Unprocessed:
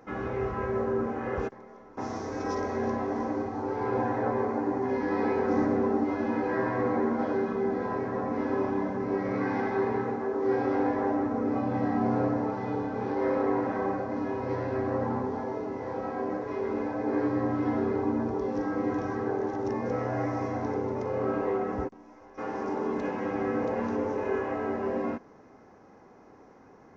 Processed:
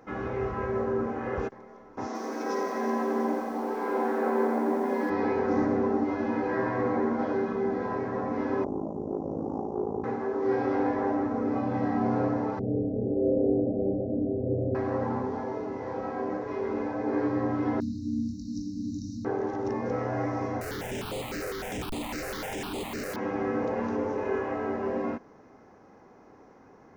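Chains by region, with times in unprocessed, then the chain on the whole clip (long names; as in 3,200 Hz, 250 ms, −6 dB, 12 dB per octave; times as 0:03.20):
0:02.06–0:05.10: linear-phase brick-wall high-pass 200 Hz + feedback echo at a low word length 87 ms, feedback 80%, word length 9 bits, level −7 dB
0:08.64–0:10.04: inverse Chebyshev band-stop filter 1,700–3,500 Hz, stop band 60 dB + ring modulation 27 Hz + highs frequency-modulated by the lows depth 0.2 ms
0:12.59–0:14.75: Butterworth low-pass 670 Hz 72 dB per octave + spectral tilt −2 dB per octave
0:17.80–0:19.25: linear-phase brick-wall band-stop 300–3,700 Hz + high-shelf EQ 3,600 Hz +11.5 dB + double-tracking delay 21 ms −8 dB
0:20.61–0:23.16: sign of each sample alone + parametric band 1,100 Hz −3 dB 0.33 octaves + step-sequenced phaser 9.9 Hz 910–5,600 Hz
whole clip: no processing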